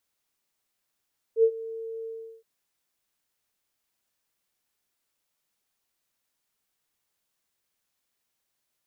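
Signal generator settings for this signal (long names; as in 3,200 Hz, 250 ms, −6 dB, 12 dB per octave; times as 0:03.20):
note with an ADSR envelope sine 451 Hz, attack 73 ms, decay 71 ms, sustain −19 dB, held 0.70 s, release 370 ms −14 dBFS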